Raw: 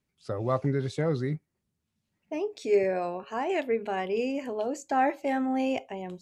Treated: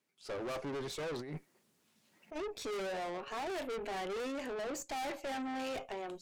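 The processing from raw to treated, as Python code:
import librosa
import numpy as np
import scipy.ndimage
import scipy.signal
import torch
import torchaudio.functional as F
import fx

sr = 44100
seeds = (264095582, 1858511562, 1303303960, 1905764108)

y = scipy.signal.sosfilt(scipy.signal.butter(2, 310.0, 'highpass', fs=sr, output='sos'), x)
y = fx.over_compress(y, sr, threshold_db=-46.0, ratio=-1.0, at=(1.17, 2.35), fade=0.02)
y = fx.tube_stage(y, sr, drive_db=41.0, bias=0.55)
y = y * librosa.db_to_amplitude(4.0)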